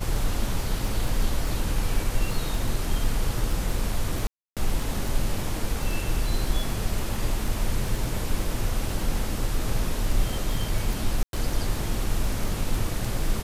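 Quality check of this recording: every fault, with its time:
crackle 16/s -27 dBFS
4.27–4.57 gap 0.297 s
11.23–11.33 gap 0.102 s

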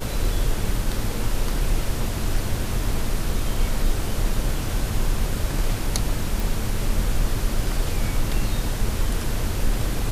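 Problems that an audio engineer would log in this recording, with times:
6.4 pop

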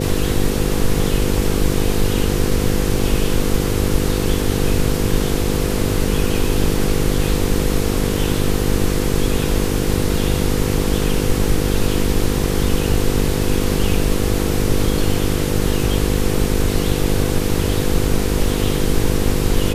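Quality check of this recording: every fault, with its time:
buzz 50 Hz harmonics 10 -21 dBFS

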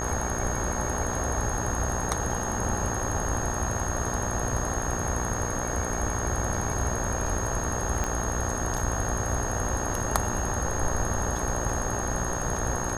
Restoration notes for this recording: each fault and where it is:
buzz 60 Hz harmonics 31 -33 dBFS
tone 6500 Hz -34 dBFS
8.04 pop -14 dBFS

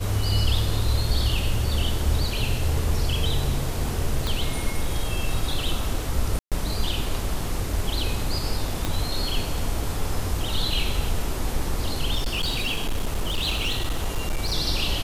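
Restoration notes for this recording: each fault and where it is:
4.27 pop
6.39–6.52 gap 0.127 s
8.85 pop -11 dBFS
12.15–14.55 clipped -20 dBFS

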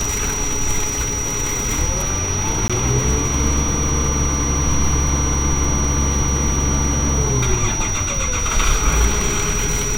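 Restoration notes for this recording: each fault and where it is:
crackle 130/s -26 dBFS
tone 5800 Hz -22 dBFS
2.68–2.7 gap 16 ms

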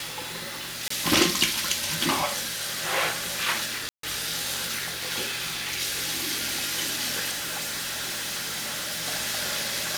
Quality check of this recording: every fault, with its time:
0.88–0.9 gap 24 ms
3.89–4.03 gap 0.143 s
7.3–9.06 clipped -28 dBFS

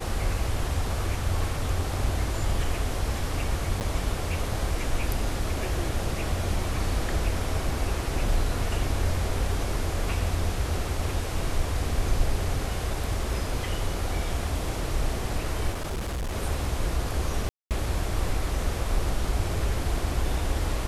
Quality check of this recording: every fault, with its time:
3.8–3.81 gap 9.5 ms
15.7–16.36 clipped -27 dBFS
17.49–17.71 gap 0.218 s

